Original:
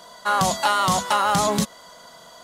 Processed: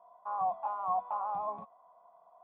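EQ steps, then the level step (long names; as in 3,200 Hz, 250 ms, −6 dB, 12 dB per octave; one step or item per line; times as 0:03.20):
formant resonators in series a
−4.0 dB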